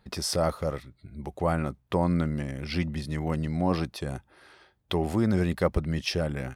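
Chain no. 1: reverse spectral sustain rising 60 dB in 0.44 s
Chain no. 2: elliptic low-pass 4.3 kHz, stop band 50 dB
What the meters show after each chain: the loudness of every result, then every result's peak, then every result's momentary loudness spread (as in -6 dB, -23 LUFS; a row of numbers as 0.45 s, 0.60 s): -27.5 LUFS, -29.5 LUFS; -9.5 dBFS, -11.0 dBFS; 11 LU, 11 LU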